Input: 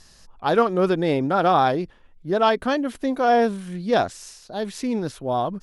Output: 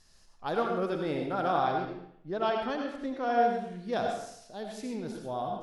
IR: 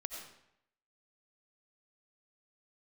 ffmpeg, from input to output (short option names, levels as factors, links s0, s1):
-filter_complex "[0:a]asettb=1/sr,asplit=3[s0][s1][s2];[s0]atrim=end=1.584[s3];[s1]atrim=start=1.58:end=3.77,asetpts=PTS-STARTPTS,afade=t=in:d=0.004:c=qsin,afade=t=out:st=2.186:d=0.004:c=qsin,lowpass=5900[s4];[s2]atrim=start=3.766[s5];[s3][s4]acrossfade=d=0.004:c1=hsin:c2=qsin[s6];[s6][s5]acrossfade=d=0.004:c1=qsin:c2=hsin[s7];[1:a]atrim=start_sample=2205,asetrate=48510,aresample=44100[s8];[s7][s8]afir=irnorm=-1:irlink=0,volume=0.398"